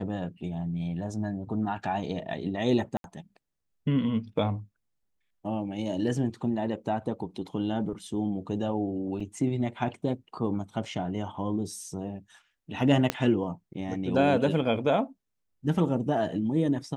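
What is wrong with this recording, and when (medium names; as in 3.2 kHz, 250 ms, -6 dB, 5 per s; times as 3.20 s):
2.97–3.04 s: dropout 72 ms
9.20 s: dropout 4.6 ms
13.10 s: pop -10 dBFS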